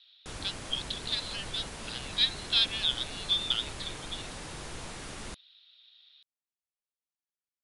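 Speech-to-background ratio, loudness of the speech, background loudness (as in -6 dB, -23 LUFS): 11.0 dB, -30.5 LUFS, -41.5 LUFS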